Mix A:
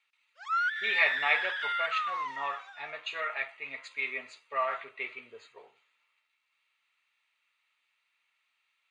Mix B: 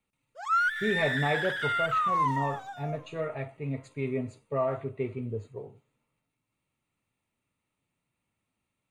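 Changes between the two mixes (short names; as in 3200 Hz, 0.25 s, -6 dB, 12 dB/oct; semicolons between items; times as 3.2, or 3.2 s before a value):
speech -12.0 dB; master: remove Butterworth band-pass 2700 Hz, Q 0.76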